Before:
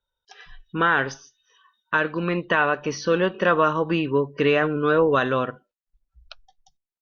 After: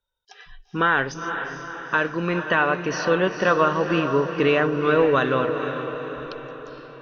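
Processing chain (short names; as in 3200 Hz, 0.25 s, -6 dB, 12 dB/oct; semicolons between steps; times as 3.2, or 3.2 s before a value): diffused feedback echo 0.462 s, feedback 53%, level -8 dB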